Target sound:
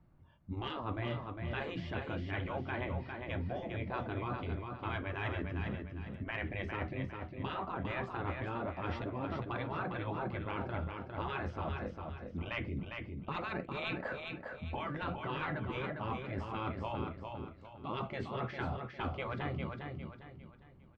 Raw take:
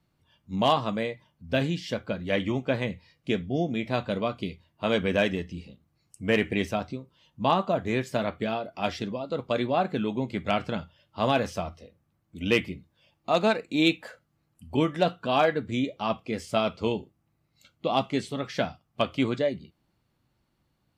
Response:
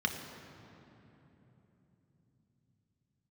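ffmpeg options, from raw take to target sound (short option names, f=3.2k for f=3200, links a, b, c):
-af "lowpass=1.4k,agate=range=-8dB:threshold=-55dB:ratio=16:detection=peak,afftfilt=real='re*lt(hypot(re,im),0.126)':imag='im*lt(hypot(re,im),0.126)':win_size=1024:overlap=0.75,lowshelf=f=67:g=11.5,areverse,acompressor=threshold=-49dB:ratio=5,areverse,bandreject=f=460:w=12,aecho=1:1:404|808|1212|1616:0.562|0.202|0.0729|0.0262,volume=12dB"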